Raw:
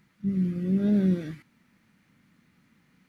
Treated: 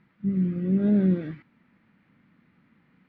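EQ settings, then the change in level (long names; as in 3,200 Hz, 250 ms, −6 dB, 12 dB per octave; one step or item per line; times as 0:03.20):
high-frequency loss of the air 400 metres
low-shelf EQ 130 Hz −6.5 dB
+4.0 dB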